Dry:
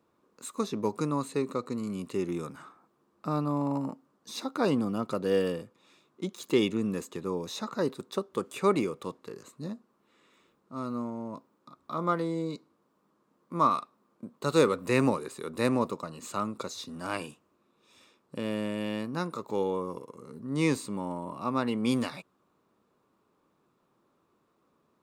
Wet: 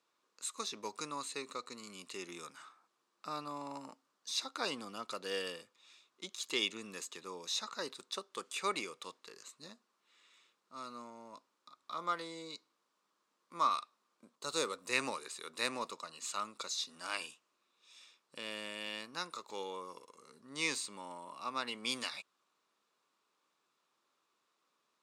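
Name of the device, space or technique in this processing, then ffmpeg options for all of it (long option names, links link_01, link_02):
piezo pickup straight into a mixer: -filter_complex "[0:a]lowpass=5300,aderivative,asettb=1/sr,asplit=3[link_01][link_02][link_03];[link_01]atrim=end=14.354[link_04];[link_02]atrim=start=14.35:end=14.93,asetpts=PTS-STARTPTS,afade=type=in:duration=0.004:curve=qsin,afade=type=out:start_time=0.576:duration=0.004:curve=qsin,equalizer=frequency=2300:width=0.68:gain=-7.5[link_05];[link_03]atrim=start=14.926[link_06];[link_04][link_05]acrossfade=duration=0.004:curve1=hsin:curve2=qsin[link_07];[link_07][link_06]acrossfade=duration=0.004:curve1=qsin:curve2=hsin,volume=9.5dB"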